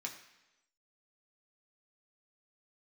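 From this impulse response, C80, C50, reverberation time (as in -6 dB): 11.0 dB, 9.0 dB, 1.0 s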